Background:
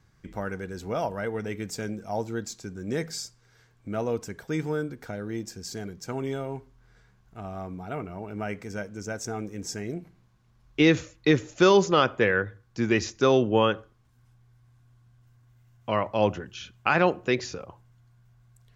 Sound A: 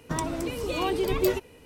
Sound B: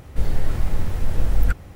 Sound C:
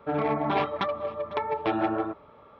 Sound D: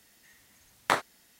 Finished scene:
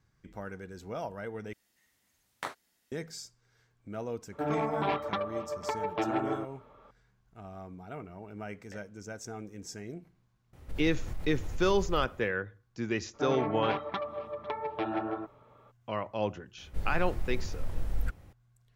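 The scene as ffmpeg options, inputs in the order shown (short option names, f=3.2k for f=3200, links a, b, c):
-filter_complex "[4:a]asplit=2[a][b];[3:a]asplit=2[c][d];[2:a]asplit=2[e][f];[0:a]volume=-8.5dB[g];[b]asplit=3[h][i][j];[h]bandpass=f=530:t=q:w=8,volume=0dB[k];[i]bandpass=f=1.84k:t=q:w=8,volume=-6dB[l];[j]bandpass=f=2.48k:t=q:w=8,volume=-9dB[m];[k][l][m]amix=inputs=3:normalize=0[n];[e]alimiter=limit=-16dB:level=0:latency=1:release=57[o];[g]asplit=2[p][q];[p]atrim=end=1.534[r];[a]atrim=end=1.39,asetpts=PTS-STARTPTS,volume=-12.5dB[s];[q]atrim=start=2.916[t];[c]atrim=end=2.59,asetpts=PTS-STARTPTS,volume=-4.5dB,afade=t=in:d=0.004:c=hsin,afade=t=out:st=2.586:d=0.004:c=hsin,adelay=4320[u];[n]atrim=end=1.39,asetpts=PTS-STARTPTS,volume=-14.5dB,afade=t=in:d=0.004:c=hsin,afade=t=out:st=1.386:d=0.004:c=hsin,adelay=7820[v];[o]atrim=end=1.75,asetpts=PTS-STARTPTS,volume=-11.5dB,afade=t=in:d=0.004:c=hsin,afade=t=out:st=1.746:d=0.004:c=hsin,adelay=10530[w];[d]atrim=end=2.59,asetpts=PTS-STARTPTS,volume=-6.5dB,afade=t=in:d=0.02,afade=t=out:st=2.57:d=0.02,adelay=13130[x];[f]atrim=end=1.75,asetpts=PTS-STARTPTS,volume=-13dB,afade=t=in:d=0.004:c=hsin,afade=t=out:st=1.746:d=0.004:c=hsin,adelay=16580[y];[r][s]acrossfade=d=0.004:c1=hsin:c2=hsin[z];[z][t]acrossfade=d=0.004:c1=hsin:c2=hsin[aa];[aa][u][v][w][x][y]amix=inputs=6:normalize=0"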